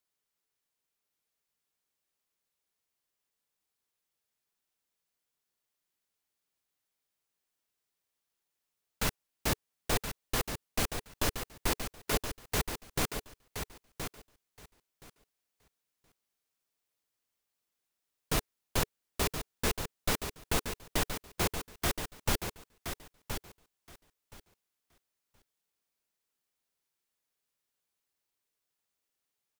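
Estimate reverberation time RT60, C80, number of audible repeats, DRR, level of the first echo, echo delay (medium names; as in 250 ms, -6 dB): no reverb, no reverb, 2, no reverb, -8.0 dB, 1022 ms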